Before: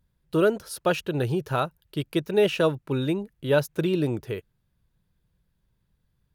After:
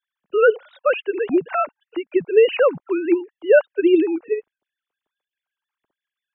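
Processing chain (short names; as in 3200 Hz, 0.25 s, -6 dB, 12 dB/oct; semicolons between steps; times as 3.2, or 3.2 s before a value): sine-wave speech; gain +6.5 dB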